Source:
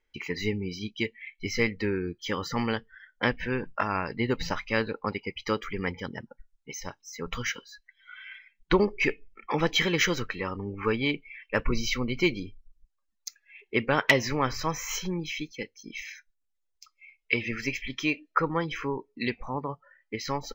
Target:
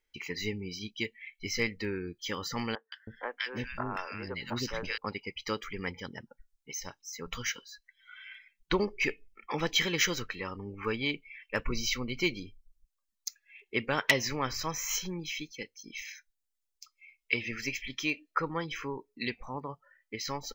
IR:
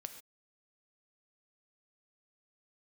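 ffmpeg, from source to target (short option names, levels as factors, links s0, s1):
-filter_complex "[0:a]highshelf=f=3300:g=10,asettb=1/sr,asplit=3[s0][s1][s2];[s0]atrim=end=2.754[s3];[s1]atrim=start=2.75:end=4.98,asetpts=PTS-STARTPTS,afade=t=in:d=0.004:c=qsin,afade=t=out:st=2.226:d=0.004:c=qsin,acrossover=split=410|1500[s4][s5][s6];[s6]adelay=170[s7];[s4]adelay=320[s8];[s8][s5][s7]amix=inputs=3:normalize=0,atrim=end_sample=98343[s9];[s2]atrim=start=4.976[s10];[s3][s9]acrossfade=d=0.004:c1=hsin:c2=qsin[s11];[s11][s10]acrossfade=d=0.004:c1=qsin:c2=hsin,volume=0.473"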